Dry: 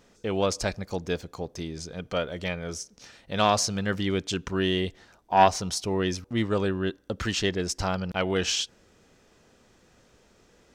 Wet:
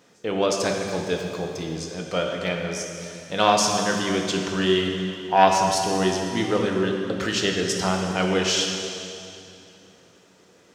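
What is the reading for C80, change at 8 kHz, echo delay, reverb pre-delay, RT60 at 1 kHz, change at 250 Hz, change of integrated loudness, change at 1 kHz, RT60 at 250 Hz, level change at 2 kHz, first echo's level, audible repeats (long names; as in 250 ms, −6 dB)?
3.5 dB, +5.0 dB, no echo audible, 3 ms, 2.6 s, +4.5 dB, +4.5 dB, +4.5 dB, 3.2 s, +5.0 dB, no echo audible, no echo audible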